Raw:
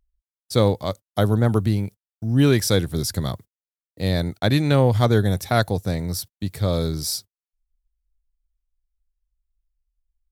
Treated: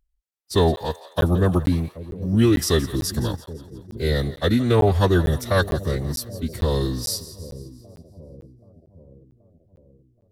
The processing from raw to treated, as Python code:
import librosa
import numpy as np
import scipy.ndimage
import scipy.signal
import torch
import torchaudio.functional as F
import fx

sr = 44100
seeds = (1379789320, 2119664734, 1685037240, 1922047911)

y = fx.echo_split(x, sr, split_hz=600.0, low_ms=778, high_ms=169, feedback_pct=52, wet_db=-15.5)
y = fx.pitch_keep_formants(y, sr, semitones=-3.5)
y = fx.buffer_crackle(y, sr, first_s=0.31, period_s=0.45, block=512, kind='zero')